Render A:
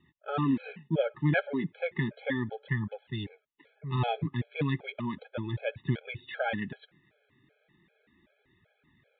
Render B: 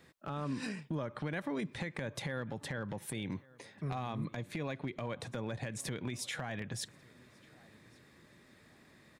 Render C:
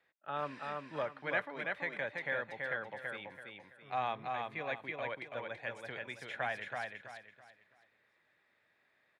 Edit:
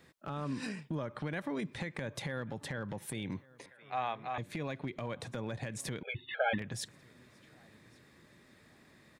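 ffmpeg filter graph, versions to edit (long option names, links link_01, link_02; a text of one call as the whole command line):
ffmpeg -i take0.wav -i take1.wav -i take2.wav -filter_complex "[1:a]asplit=3[link_01][link_02][link_03];[link_01]atrim=end=3.662[link_04];[2:a]atrim=start=3.658:end=4.382[link_05];[link_02]atrim=start=4.378:end=6.032[link_06];[0:a]atrim=start=6.028:end=6.582[link_07];[link_03]atrim=start=6.578[link_08];[link_04][link_05]acrossfade=duration=0.004:curve1=hsin:curve2=hsin[link_09];[link_09][link_06]acrossfade=duration=0.004:curve1=hsin:curve2=hsin[link_10];[link_10][link_07]acrossfade=duration=0.004:curve1=hsin:curve2=hsin[link_11];[link_11][link_08]acrossfade=duration=0.004:curve1=hsin:curve2=hsin" out.wav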